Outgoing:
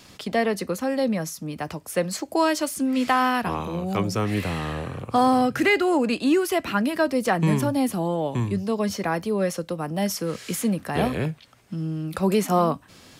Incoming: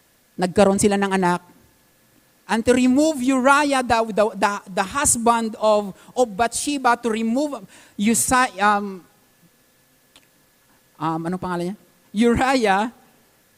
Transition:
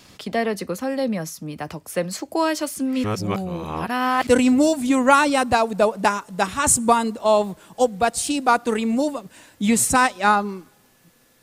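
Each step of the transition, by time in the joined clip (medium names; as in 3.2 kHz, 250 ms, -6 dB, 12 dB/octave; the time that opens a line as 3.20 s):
outgoing
3.04–4.27 s: reverse
4.27 s: go over to incoming from 2.65 s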